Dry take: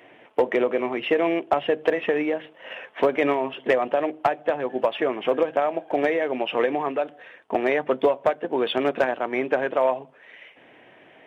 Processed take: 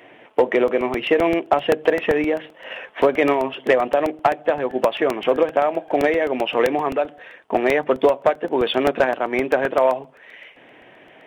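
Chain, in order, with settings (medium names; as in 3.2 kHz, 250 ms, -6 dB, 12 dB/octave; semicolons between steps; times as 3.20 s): crackling interface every 0.13 s, samples 64, repeat, from 0.68 s; trim +4 dB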